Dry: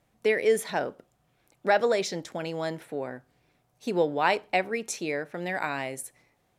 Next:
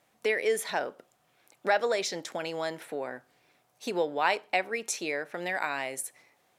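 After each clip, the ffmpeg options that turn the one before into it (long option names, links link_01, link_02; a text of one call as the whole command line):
ffmpeg -i in.wav -filter_complex "[0:a]highpass=frequency=580:poles=1,asplit=2[link_01][link_02];[link_02]acompressor=threshold=-38dB:ratio=6,volume=3dB[link_03];[link_01][link_03]amix=inputs=2:normalize=0,volume=-2.5dB" out.wav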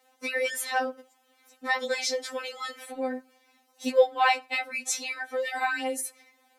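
ffmpeg -i in.wav -af "afftfilt=real='re*3.46*eq(mod(b,12),0)':imag='im*3.46*eq(mod(b,12),0)':win_size=2048:overlap=0.75,volume=6dB" out.wav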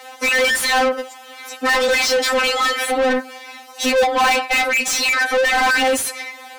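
ffmpeg -i in.wav -filter_complex "[0:a]asplit=2[link_01][link_02];[link_02]highpass=frequency=720:poles=1,volume=36dB,asoftclip=type=tanh:threshold=-9dB[link_03];[link_01][link_03]amix=inputs=2:normalize=0,lowpass=frequency=4200:poles=1,volume=-6dB" out.wav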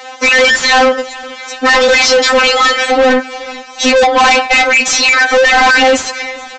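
ffmpeg -i in.wav -af "aresample=16000,volume=14.5dB,asoftclip=hard,volume=-14.5dB,aresample=44100,aecho=1:1:427|854|1281:0.0944|0.0434|0.02,volume=8.5dB" out.wav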